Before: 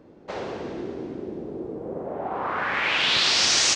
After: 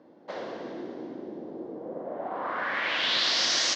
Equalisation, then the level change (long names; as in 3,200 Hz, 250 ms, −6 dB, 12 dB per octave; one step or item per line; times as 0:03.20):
dynamic equaliser 840 Hz, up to −7 dB, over −48 dBFS, Q 4.8
loudspeaker in its box 280–6,100 Hz, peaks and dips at 410 Hz −8 dB, 1,300 Hz −5 dB, 2,500 Hz −8 dB
high-shelf EQ 4,100 Hz −6.5 dB
0.0 dB